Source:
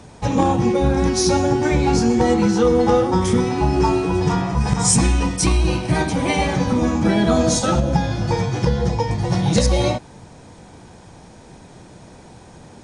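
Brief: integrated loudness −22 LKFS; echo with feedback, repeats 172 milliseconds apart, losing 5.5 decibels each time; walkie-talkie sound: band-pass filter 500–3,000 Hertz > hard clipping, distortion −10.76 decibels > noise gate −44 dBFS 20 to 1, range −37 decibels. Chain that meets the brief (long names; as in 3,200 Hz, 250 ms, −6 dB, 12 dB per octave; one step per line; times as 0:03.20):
band-pass filter 500–3,000 Hz
repeating echo 172 ms, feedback 53%, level −5.5 dB
hard clipping −20.5 dBFS
noise gate −44 dBFS 20 to 1, range −37 dB
level +3.5 dB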